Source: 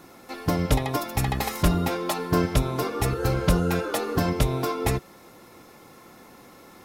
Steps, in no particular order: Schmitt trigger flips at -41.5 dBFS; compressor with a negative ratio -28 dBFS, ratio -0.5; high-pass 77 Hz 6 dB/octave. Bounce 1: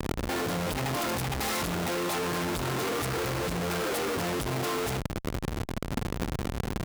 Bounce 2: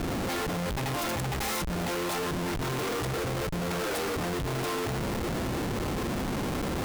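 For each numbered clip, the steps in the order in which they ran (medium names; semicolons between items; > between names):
Schmitt trigger > compressor with a negative ratio > high-pass; compressor with a negative ratio > high-pass > Schmitt trigger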